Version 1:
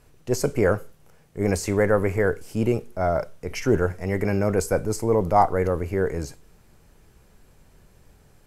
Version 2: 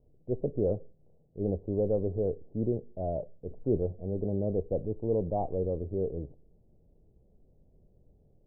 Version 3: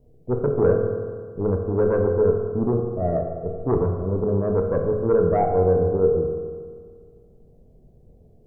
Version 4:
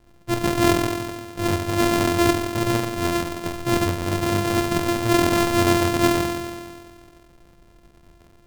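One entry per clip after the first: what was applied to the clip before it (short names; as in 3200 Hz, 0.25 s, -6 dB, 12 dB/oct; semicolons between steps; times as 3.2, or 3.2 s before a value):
steep low-pass 650 Hz 36 dB/oct; gain -7.5 dB
sine folder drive 6 dB, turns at -15.5 dBFS; on a send at -2 dB: reverb RT60 1.8 s, pre-delay 3 ms; on the sum: gain -1.5 dB
sample sorter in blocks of 128 samples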